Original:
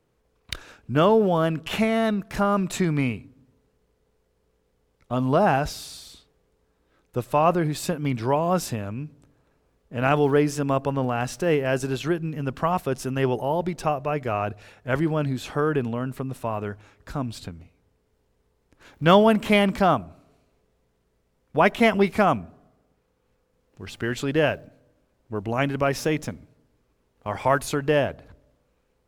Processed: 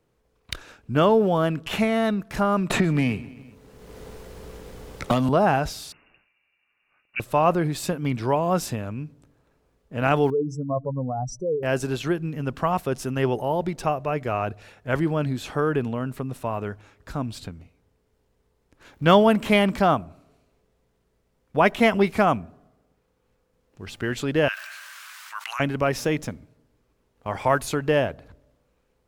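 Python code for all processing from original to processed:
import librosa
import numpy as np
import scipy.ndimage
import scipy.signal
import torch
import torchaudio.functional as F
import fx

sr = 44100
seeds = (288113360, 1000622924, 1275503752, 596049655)

y = fx.chain(x, sr, fx.leveller(passes=1),
    fx.echo_feedback(ms=130, feedback_pct=38, wet_db=-23),
    fx.band_squash(depth_pct=100), at=(2.7, 5.29))
y = fx.chain(y, sr, fx.low_shelf(hz=430.0, db=-7.5),
    fx.freq_invert(carrier_hz=2800), at=(5.92, 7.2))
y = fx.chain(y, sr, fx.spec_expand(power=2.7),
    fx.ellip_bandstop(low_hz=1200.0, high_hz=4900.0, order=3, stop_db=40),
    fx.peak_eq(hz=320.0, db=-6.0, octaves=1.0), at=(10.3, 11.63))
y = fx.chain(y, sr, fx.steep_highpass(hz=1200.0, slope=36),
    fx.env_flatten(amount_pct=70), at=(24.48, 25.6))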